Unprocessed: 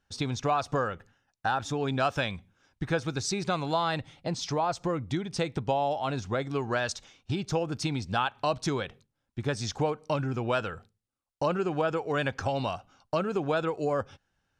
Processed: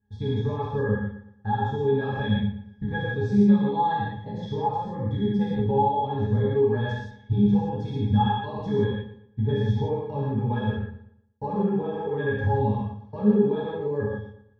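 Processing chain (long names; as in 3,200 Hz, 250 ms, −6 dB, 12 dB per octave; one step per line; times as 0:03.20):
low-shelf EQ 230 Hz +11.5 dB
resonances in every octave G#, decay 0.16 s
on a send: feedback echo with a low-pass in the loop 117 ms, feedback 35%, low-pass 4,000 Hz, level −13 dB
on the sum: reverb whose tail is shaped and stops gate 200 ms flat, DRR −7.5 dB
level +5.5 dB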